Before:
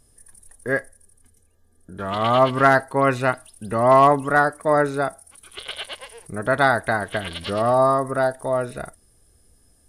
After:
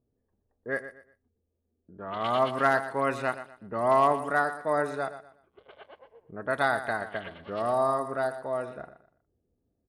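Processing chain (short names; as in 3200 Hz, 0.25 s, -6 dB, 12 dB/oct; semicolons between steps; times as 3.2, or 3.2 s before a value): low-pass opened by the level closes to 430 Hz, open at -16 dBFS; HPF 220 Hz 6 dB/oct; feedback echo 0.121 s, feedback 29%, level -12.5 dB; gain -8 dB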